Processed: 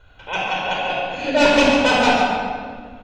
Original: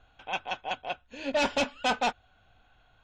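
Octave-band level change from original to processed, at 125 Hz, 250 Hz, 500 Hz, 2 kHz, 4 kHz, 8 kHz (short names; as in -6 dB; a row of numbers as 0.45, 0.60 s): +17.0, +16.5, +14.0, +13.5, +12.0, +10.5 dB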